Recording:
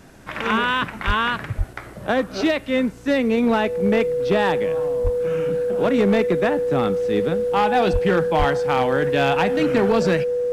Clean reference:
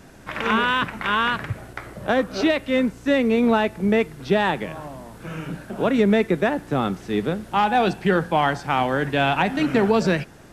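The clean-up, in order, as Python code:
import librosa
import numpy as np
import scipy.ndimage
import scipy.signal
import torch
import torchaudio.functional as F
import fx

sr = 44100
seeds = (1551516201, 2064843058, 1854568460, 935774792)

y = fx.fix_declip(x, sr, threshold_db=-11.5)
y = fx.notch(y, sr, hz=490.0, q=30.0)
y = fx.fix_deplosive(y, sr, at_s=(1.06, 1.57, 5.03, 7.92, 8.38))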